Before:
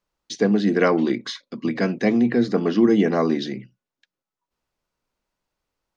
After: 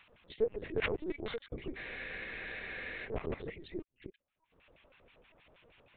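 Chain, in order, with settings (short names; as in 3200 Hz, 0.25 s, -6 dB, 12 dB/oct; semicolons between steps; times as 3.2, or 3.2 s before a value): reverse delay 0.273 s, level -9 dB; added harmonics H 3 -9 dB, 5 -26 dB, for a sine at -3.5 dBFS; upward compressor, threshold -19 dBFS; LFO band-pass square 6.3 Hz 460–2500 Hz; LPC vocoder at 8 kHz pitch kept; spectral freeze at 1.78, 1.27 s; gain -1 dB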